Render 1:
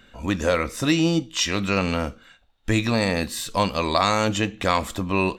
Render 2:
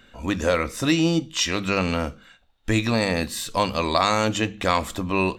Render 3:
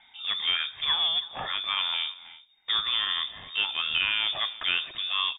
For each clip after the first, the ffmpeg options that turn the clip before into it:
-af "bandreject=f=50:t=h:w=6,bandreject=f=100:t=h:w=6,bandreject=f=150:t=h:w=6,bandreject=f=200:t=h:w=6"
-filter_complex "[0:a]asplit=2[a][b];[b]aeval=exprs='(mod(11.2*val(0)+1,2)-1)/11.2':c=same,volume=-10.5dB[c];[a][c]amix=inputs=2:normalize=0,aecho=1:1:325:0.112,lowpass=f=3.1k:t=q:w=0.5098,lowpass=f=3.1k:t=q:w=0.6013,lowpass=f=3.1k:t=q:w=0.9,lowpass=f=3.1k:t=q:w=2.563,afreqshift=-3700,volume=-6dB"

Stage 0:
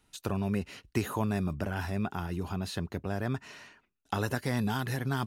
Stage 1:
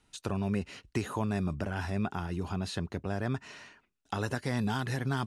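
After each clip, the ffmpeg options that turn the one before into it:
-filter_complex "[0:a]lowpass=f=10k:w=0.5412,lowpass=f=10k:w=1.3066,asplit=2[a][b];[b]alimiter=limit=-20.5dB:level=0:latency=1:release=354,volume=2.5dB[c];[a][c]amix=inputs=2:normalize=0,volume=-7dB"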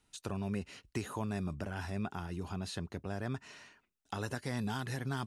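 -af "highshelf=f=6.1k:g=5.5,volume=-5.5dB"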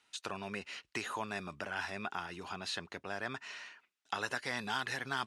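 -af "bandpass=f=2.3k:t=q:w=0.61:csg=0,volume=8dB"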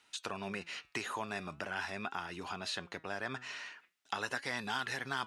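-filter_complex "[0:a]asplit=2[a][b];[b]acompressor=threshold=-45dB:ratio=6,volume=0.5dB[c];[a][c]amix=inputs=2:normalize=0,flanger=delay=3:depth=5:regen=89:speed=0.44:shape=triangular,volume=2dB"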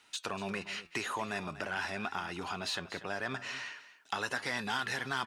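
-filter_complex "[0:a]asplit=2[a][b];[b]asoftclip=type=tanh:threshold=-38dB,volume=-4dB[c];[a][c]amix=inputs=2:normalize=0,aecho=1:1:240:0.178"

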